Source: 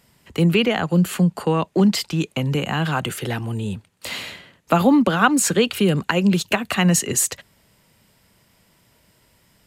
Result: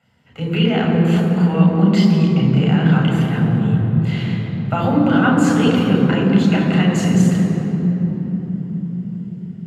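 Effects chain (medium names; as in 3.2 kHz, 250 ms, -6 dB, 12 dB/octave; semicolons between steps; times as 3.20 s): treble shelf 3.9 kHz -10.5 dB; transient shaper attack -3 dB, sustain +4 dB; reverberation RT60 4.0 s, pre-delay 3 ms, DRR -2.5 dB; trim -12 dB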